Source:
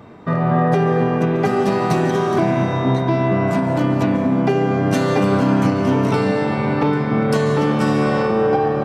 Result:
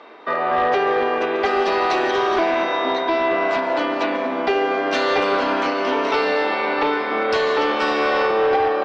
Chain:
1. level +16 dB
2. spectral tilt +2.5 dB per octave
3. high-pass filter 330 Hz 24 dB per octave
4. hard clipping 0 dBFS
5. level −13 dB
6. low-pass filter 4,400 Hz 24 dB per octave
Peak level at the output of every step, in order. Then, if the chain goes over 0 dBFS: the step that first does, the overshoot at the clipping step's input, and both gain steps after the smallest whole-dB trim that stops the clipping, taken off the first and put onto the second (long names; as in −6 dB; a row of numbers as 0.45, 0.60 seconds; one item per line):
+11.0, +9.5, +9.0, 0.0, −13.0, −11.5 dBFS
step 1, 9.0 dB
step 1 +7 dB, step 5 −4 dB